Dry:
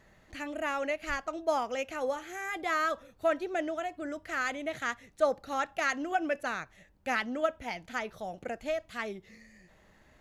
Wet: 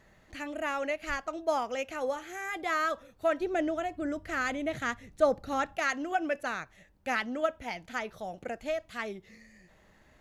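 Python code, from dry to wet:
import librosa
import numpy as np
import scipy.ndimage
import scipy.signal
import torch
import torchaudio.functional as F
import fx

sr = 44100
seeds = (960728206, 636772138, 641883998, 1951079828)

y = fx.low_shelf(x, sr, hz=280.0, db=11.5, at=(3.4, 5.76))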